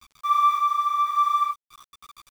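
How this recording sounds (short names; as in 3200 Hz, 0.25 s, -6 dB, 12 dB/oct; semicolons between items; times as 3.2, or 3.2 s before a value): a quantiser's noise floor 8-bit, dither none; random-step tremolo; a shimmering, thickened sound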